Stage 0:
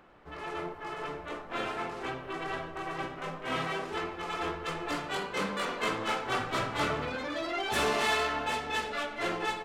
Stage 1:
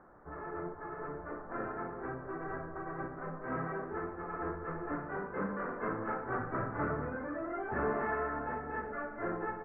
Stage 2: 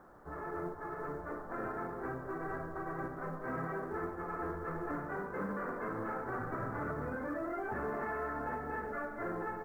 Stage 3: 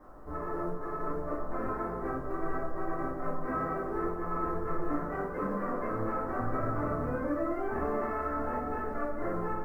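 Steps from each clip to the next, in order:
dynamic EQ 870 Hz, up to -6 dB, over -44 dBFS, Q 0.79; steep low-pass 1700 Hz 48 dB/oct
limiter -30.5 dBFS, peak gain reduction 9 dB; companded quantiser 8-bit; gain +1 dB
reverb RT60 0.30 s, pre-delay 3 ms, DRR -9.5 dB; gain -7.5 dB

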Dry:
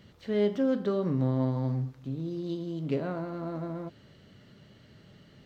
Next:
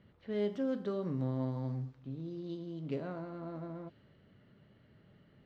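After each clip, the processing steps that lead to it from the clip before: low-pass opened by the level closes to 2200 Hz, open at -23 dBFS; gain -7.5 dB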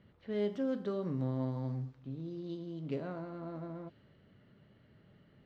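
nothing audible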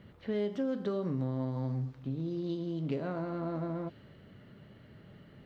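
compressor 3:1, threshold -40 dBFS, peak gain reduction 9 dB; gain +8.5 dB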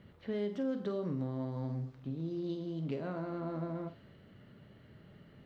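flutter echo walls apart 8.4 m, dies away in 0.25 s; gain -3 dB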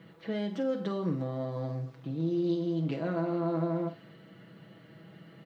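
HPF 160 Hz 12 dB/oct; comb 6.1 ms, depth 70%; gain +5 dB

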